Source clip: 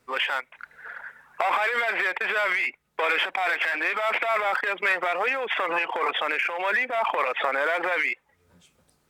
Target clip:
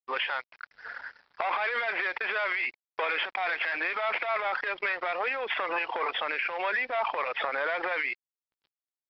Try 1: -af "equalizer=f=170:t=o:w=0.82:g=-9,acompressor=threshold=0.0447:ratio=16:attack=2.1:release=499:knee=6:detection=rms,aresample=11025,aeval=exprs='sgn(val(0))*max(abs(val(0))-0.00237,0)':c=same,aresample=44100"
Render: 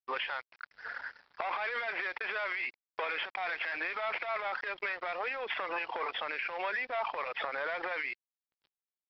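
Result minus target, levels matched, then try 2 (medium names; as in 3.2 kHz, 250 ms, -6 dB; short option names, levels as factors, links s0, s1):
compression: peak gain reduction +5.5 dB
-af "equalizer=f=170:t=o:w=0.82:g=-9,acompressor=threshold=0.0891:ratio=16:attack=2.1:release=499:knee=6:detection=rms,aresample=11025,aeval=exprs='sgn(val(0))*max(abs(val(0))-0.00237,0)':c=same,aresample=44100"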